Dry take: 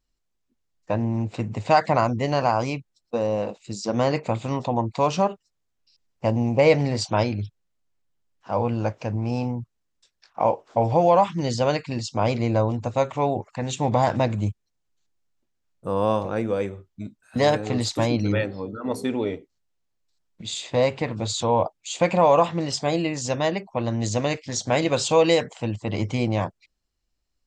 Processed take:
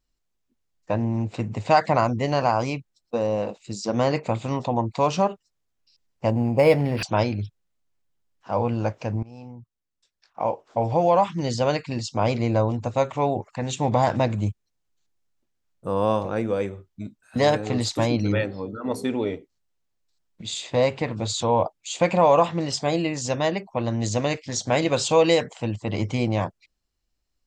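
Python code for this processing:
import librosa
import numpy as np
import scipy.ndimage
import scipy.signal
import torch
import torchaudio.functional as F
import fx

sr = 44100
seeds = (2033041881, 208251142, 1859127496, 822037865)

y = fx.resample_linear(x, sr, factor=6, at=(6.3, 7.03))
y = fx.edit(y, sr, fx.fade_in_from(start_s=9.23, length_s=3.08, curve='qsin', floor_db=-21.0), tone=tone)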